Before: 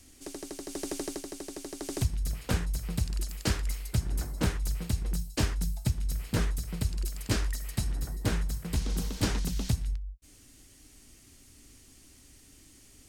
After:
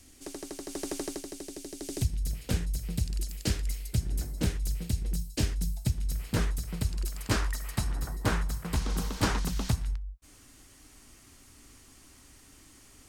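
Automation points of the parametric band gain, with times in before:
parametric band 1,100 Hz 1.4 octaves
0:01.03 +1 dB
0:01.64 −9.5 dB
0:05.55 −9.5 dB
0:06.34 +1 dB
0:06.85 +1 dB
0:07.49 +9 dB

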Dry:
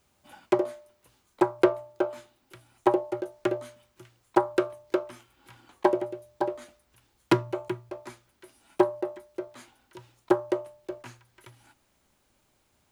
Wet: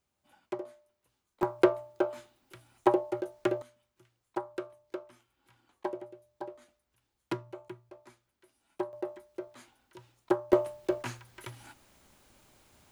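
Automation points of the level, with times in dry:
−13.5 dB
from 0:01.43 −2 dB
from 0:03.62 −13 dB
from 0:08.93 −5 dB
from 0:10.53 +7 dB

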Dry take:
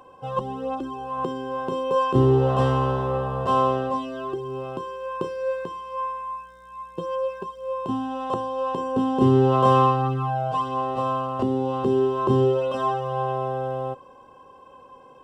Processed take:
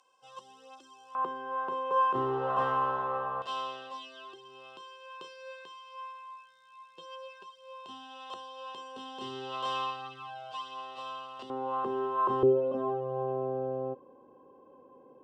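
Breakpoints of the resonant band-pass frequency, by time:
resonant band-pass, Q 1.5
6,100 Hz
from 0:01.15 1,300 Hz
from 0:03.42 3,800 Hz
from 0:11.50 1,200 Hz
from 0:12.43 320 Hz

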